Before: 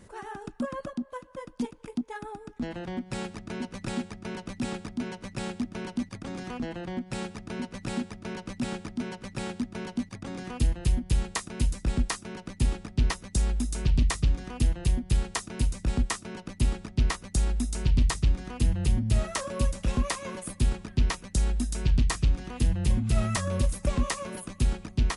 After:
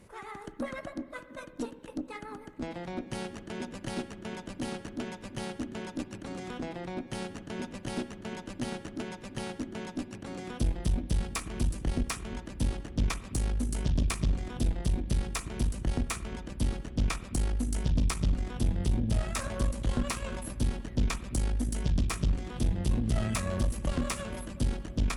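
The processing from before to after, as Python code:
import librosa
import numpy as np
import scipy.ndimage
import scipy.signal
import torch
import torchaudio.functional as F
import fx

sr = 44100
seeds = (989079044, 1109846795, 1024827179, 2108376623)

y = fx.formant_shift(x, sr, semitones=3)
y = fx.echo_wet_lowpass(y, sr, ms=352, feedback_pct=82, hz=410.0, wet_db=-15)
y = fx.rev_spring(y, sr, rt60_s=1.2, pass_ms=(46, 58), chirp_ms=65, drr_db=13.0)
y = fx.tube_stage(y, sr, drive_db=20.0, bias=0.65)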